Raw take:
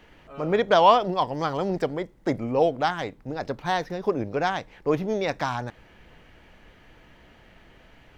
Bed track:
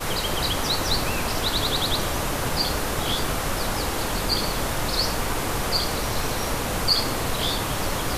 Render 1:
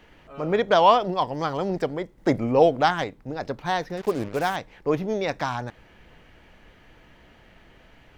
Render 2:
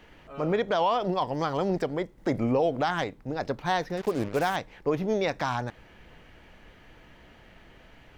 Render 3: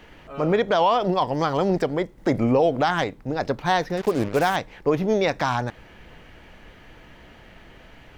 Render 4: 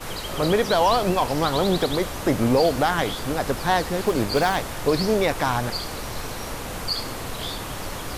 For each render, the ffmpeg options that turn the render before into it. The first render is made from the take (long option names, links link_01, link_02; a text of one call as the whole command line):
ffmpeg -i in.wav -filter_complex "[0:a]asettb=1/sr,asplit=3[link_01][link_02][link_03];[link_01]atrim=end=3.974[link_04];[link_02]atrim=start=3.97:end=4.56,asetpts=PTS-STARTPTS,afade=type=in:duration=0.004:curve=qsin,afade=type=out:start_time=0.586:duration=0.004:curve=qsin,acrusher=bits=5:mix=0:aa=0.5[link_05];[link_03]atrim=start=4.556[link_06];[link_04][link_05]acrossfade=duration=0.004:curve1=hsin:curve2=qsin[link_07];[link_07][link_06]acrossfade=duration=0.004:curve1=qsin:curve2=hsin,asplit=3[link_08][link_09][link_10];[link_08]atrim=end=2.182[link_11];[link_09]atrim=start=2.178:end=3.042,asetpts=PTS-STARTPTS,volume=4dB[link_12];[link_10]atrim=start=3.038[link_13];[link_11][link_12]acrossfade=duration=0.004:curve1=hsin:curve2=hsin[link_14];[link_14][link_13]acrossfade=duration=0.004:curve1=hsin:curve2=hsin" out.wav
ffmpeg -i in.wav -af "alimiter=limit=-16dB:level=0:latency=1:release=94" out.wav
ffmpeg -i in.wav -af "volume=5.5dB" out.wav
ffmpeg -i in.wav -i bed.wav -filter_complex "[1:a]volume=-6dB[link_01];[0:a][link_01]amix=inputs=2:normalize=0" out.wav